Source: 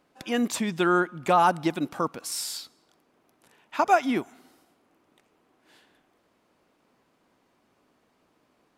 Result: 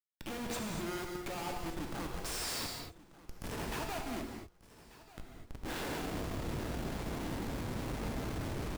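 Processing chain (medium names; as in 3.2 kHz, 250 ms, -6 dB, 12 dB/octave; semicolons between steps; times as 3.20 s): recorder AGC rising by 16 dB/s; dynamic bell 250 Hz, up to -6 dB, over -43 dBFS, Q 4.7; compression 4:1, threshold -28 dBFS, peak gain reduction 12 dB; Schmitt trigger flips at -33.5 dBFS; feedback delay 1189 ms, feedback 33%, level -19 dB; gated-style reverb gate 270 ms flat, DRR 1 dB; trim -5.5 dB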